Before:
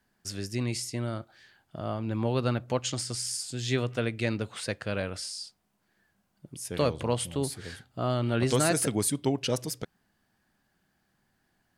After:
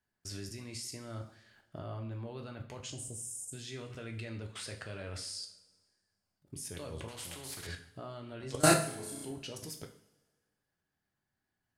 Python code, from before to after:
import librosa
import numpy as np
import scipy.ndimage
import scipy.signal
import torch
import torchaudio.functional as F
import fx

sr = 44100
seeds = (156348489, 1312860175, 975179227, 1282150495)

y = fx.cheby2_bandstop(x, sr, low_hz=1300.0, high_hz=4600.0, order=4, stop_db=40, at=(2.9, 3.53))
y = fx.room_flutter(y, sr, wall_m=5.6, rt60_s=0.71, at=(8.6, 9.31))
y = fx.level_steps(y, sr, step_db=22)
y = fx.rev_double_slope(y, sr, seeds[0], early_s=0.48, late_s=1.6, knee_db=-18, drr_db=2.5)
y = fx.spectral_comp(y, sr, ratio=2.0, at=(7.08, 7.67))